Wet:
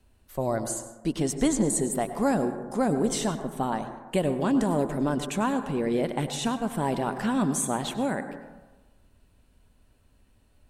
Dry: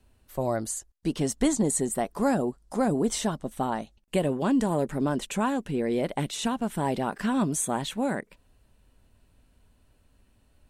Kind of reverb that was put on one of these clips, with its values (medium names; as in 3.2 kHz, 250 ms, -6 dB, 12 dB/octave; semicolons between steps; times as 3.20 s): plate-style reverb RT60 1.2 s, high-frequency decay 0.3×, pre-delay 85 ms, DRR 9.5 dB